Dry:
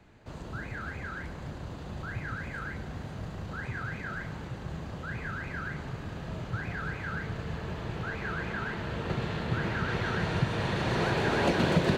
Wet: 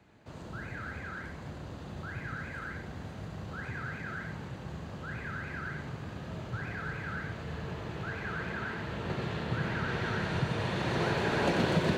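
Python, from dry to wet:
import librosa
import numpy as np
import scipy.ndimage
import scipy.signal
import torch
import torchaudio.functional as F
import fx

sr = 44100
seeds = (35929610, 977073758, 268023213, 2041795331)

y = scipy.signal.sosfilt(scipy.signal.butter(2, 68.0, 'highpass', fs=sr, output='sos'), x)
y = y + 10.0 ** (-6.0 / 20.0) * np.pad(y, (int(89 * sr / 1000.0), 0))[:len(y)]
y = y * librosa.db_to_amplitude(-3.0)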